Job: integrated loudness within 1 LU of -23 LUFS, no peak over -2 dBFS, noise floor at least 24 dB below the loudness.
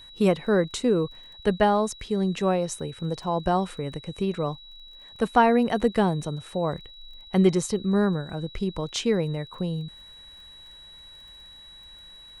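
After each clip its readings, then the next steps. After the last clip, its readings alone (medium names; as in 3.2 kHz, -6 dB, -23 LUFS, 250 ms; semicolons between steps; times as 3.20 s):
tick rate 21 per s; steady tone 3.9 kHz; tone level -45 dBFS; loudness -25.5 LUFS; peak level -7.5 dBFS; loudness target -23.0 LUFS
-> de-click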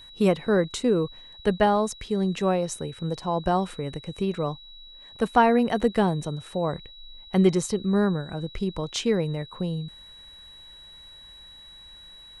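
tick rate 0.081 per s; steady tone 3.9 kHz; tone level -45 dBFS
-> band-stop 3.9 kHz, Q 30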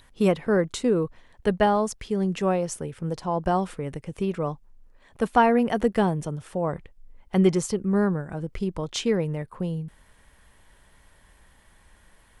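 steady tone not found; loudness -25.5 LUFS; peak level -7.5 dBFS; loudness target -23.0 LUFS
-> trim +2.5 dB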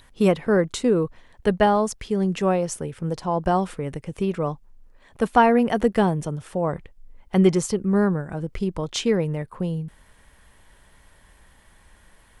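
loudness -23.0 LUFS; peak level -5.0 dBFS; noise floor -55 dBFS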